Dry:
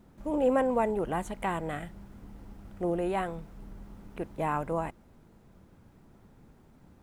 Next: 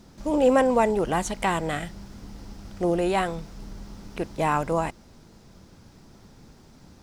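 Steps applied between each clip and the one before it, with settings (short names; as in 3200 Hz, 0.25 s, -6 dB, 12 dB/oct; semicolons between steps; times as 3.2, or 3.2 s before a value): bell 5200 Hz +15 dB 1.2 oct; gain +6 dB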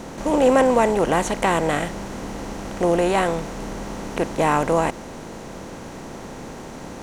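per-bin compression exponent 0.6; gain +1.5 dB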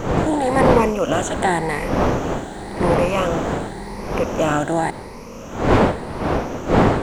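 moving spectral ripple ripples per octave 0.87, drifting +0.9 Hz, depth 14 dB; wind noise 630 Hz -19 dBFS; gain -2.5 dB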